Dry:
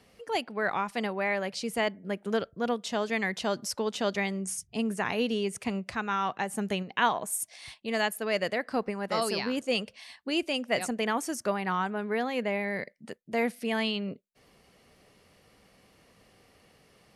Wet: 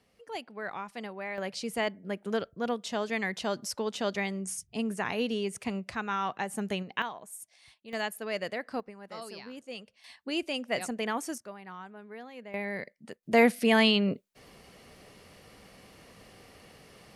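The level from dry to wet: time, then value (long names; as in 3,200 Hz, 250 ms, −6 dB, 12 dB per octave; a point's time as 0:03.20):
−8.5 dB
from 0:01.38 −2 dB
from 0:07.02 −12.5 dB
from 0:07.93 −5 dB
from 0:08.80 −13.5 dB
from 0:10.04 −3 dB
from 0:11.38 −15 dB
from 0:12.54 −3 dB
from 0:13.23 +7 dB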